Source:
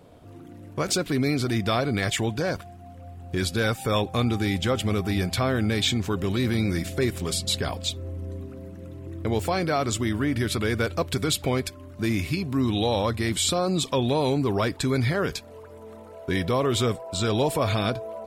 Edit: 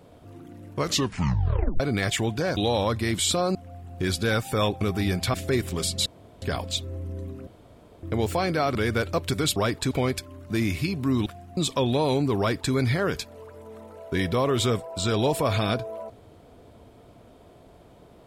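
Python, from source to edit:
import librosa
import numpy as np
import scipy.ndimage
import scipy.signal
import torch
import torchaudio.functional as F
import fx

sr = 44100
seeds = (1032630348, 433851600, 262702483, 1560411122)

y = fx.edit(x, sr, fx.tape_stop(start_s=0.76, length_s=1.04),
    fx.swap(start_s=2.57, length_s=0.31, other_s=12.75, other_length_s=0.98),
    fx.cut(start_s=4.14, length_s=0.77),
    fx.cut(start_s=5.44, length_s=1.39),
    fx.insert_room_tone(at_s=7.55, length_s=0.36),
    fx.room_tone_fill(start_s=8.6, length_s=0.56),
    fx.cut(start_s=9.88, length_s=0.71),
    fx.duplicate(start_s=14.54, length_s=0.35, to_s=11.4), tone=tone)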